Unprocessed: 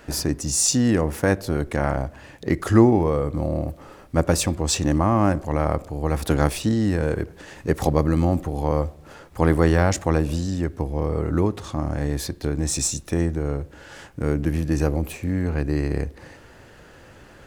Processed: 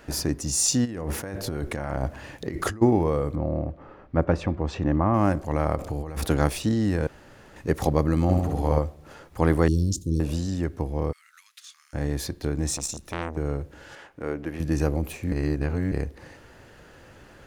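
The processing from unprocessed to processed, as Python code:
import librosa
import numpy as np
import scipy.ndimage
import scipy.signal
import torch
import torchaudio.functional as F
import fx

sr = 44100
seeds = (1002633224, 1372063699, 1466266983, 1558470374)

y = fx.over_compress(x, sr, threshold_db=-27.0, ratio=-1.0, at=(0.84, 2.81), fade=0.02)
y = fx.lowpass(y, sr, hz=2000.0, slope=12, at=(3.35, 5.14))
y = fx.over_compress(y, sr, threshold_db=-30.0, ratio=-1.0, at=(5.75, 6.25), fade=0.02)
y = fx.room_flutter(y, sr, wall_m=11.5, rt60_s=0.95, at=(8.22, 8.79))
y = fx.cheby2_bandstop(y, sr, low_hz=760.0, high_hz=1900.0, order=4, stop_db=60, at=(9.68, 10.2))
y = fx.bessel_highpass(y, sr, hz=2900.0, order=8, at=(11.11, 11.93), fade=0.02)
y = fx.transformer_sat(y, sr, knee_hz=1500.0, at=(12.71, 13.37))
y = fx.bass_treble(y, sr, bass_db=-14, treble_db=-10, at=(13.95, 14.6))
y = fx.edit(y, sr, fx.room_tone_fill(start_s=7.07, length_s=0.49),
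    fx.reverse_span(start_s=15.32, length_s=0.6), tone=tone)
y = fx.notch(y, sr, hz=7900.0, q=25.0)
y = y * 10.0 ** (-2.5 / 20.0)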